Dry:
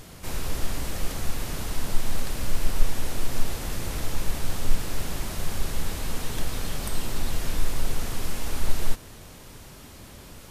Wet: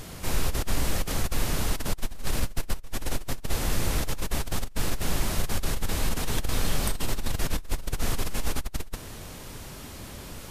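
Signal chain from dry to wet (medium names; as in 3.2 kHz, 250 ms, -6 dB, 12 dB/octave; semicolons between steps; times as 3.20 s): compressor with a negative ratio -23 dBFS, ratio -0.5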